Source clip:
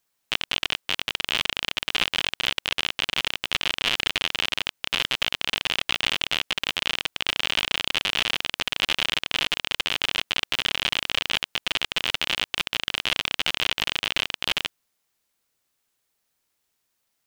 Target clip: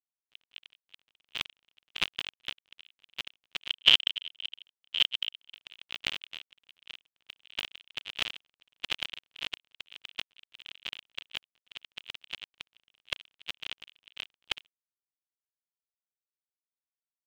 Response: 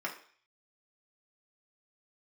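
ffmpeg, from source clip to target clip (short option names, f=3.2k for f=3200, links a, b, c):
-filter_complex "[0:a]agate=range=-46dB:threshold=-22dB:ratio=16:detection=peak,asettb=1/sr,asplit=3[a][b][c];[a]atrim=end=3.704[d];[b]atrim=start=3.7:end=5.54,asetpts=PTS-STARTPTS,afade=t=in:d=0.004:c=qsin,afade=t=out:st=1.836:d=0.004:c=qsin,equalizer=f=3.1k:w=3.3:g=13[e];[c]atrim=start=5.536[f];[d][e]acrossfade=d=0.004:c1=hsin:c2=qsin[g];[g][f]acrossfade=d=0.004:c1=qsin:c2=hsin"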